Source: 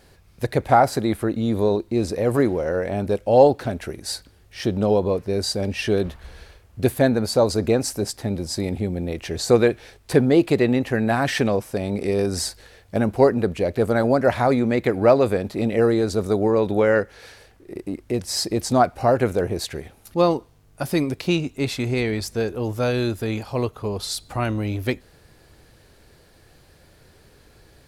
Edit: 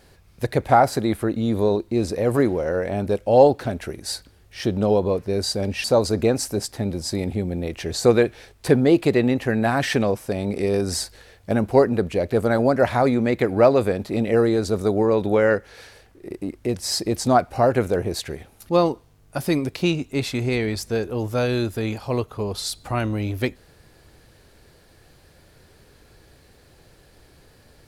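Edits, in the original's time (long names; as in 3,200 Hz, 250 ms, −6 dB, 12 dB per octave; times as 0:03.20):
0:05.84–0:07.29: remove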